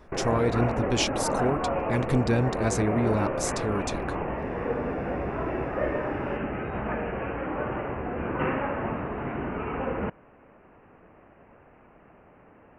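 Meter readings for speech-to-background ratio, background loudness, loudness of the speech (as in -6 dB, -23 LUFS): 2.0 dB, -30.0 LUFS, -28.0 LUFS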